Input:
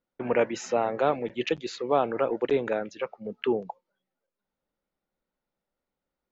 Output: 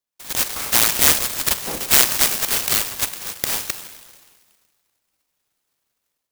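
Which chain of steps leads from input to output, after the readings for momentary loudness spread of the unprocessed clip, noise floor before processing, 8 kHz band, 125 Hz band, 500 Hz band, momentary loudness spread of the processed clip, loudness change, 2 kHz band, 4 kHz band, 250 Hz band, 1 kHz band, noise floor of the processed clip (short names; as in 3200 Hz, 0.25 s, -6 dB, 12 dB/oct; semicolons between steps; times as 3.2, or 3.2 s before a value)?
10 LU, under -85 dBFS, n/a, +5.0 dB, -8.5 dB, 11 LU, +11.0 dB, +12.0 dB, +19.5 dB, -3.5 dB, +1.0 dB, -78 dBFS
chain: band-swap scrambler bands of 4000 Hz; notch 4300 Hz, Q 6.4; AGC gain up to 12.5 dB; Schroeder reverb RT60 1.7 s, combs from 32 ms, DRR 8 dB; clock jitter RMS 0.11 ms; gain +2 dB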